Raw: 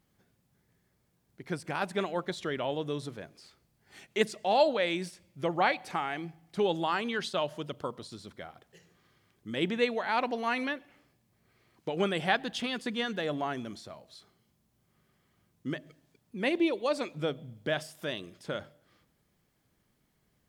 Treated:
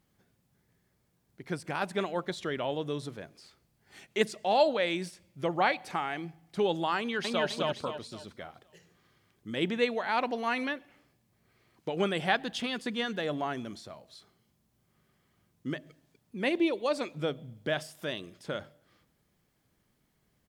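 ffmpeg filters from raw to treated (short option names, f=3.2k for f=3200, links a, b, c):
-filter_complex "[0:a]asplit=2[a][b];[b]afade=t=in:st=6.98:d=0.01,afade=t=out:st=7.46:d=0.01,aecho=0:1:260|520|780|1040|1300:0.944061|0.330421|0.115647|0.0404766|0.0141668[c];[a][c]amix=inputs=2:normalize=0"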